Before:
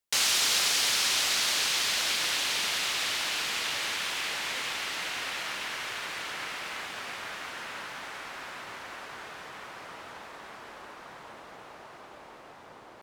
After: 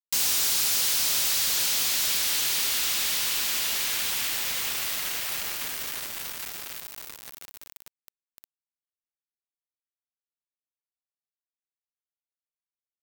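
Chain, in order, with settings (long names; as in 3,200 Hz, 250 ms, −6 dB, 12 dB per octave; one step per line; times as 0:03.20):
first-order pre-emphasis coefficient 0.8
delay with a low-pass on its return 974 ms, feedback 54%, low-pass 1,100 Hz, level −11 dB
log-companded quantiser 2 bits
parametric band 16,000 Hz +13 dB 0.2 octaves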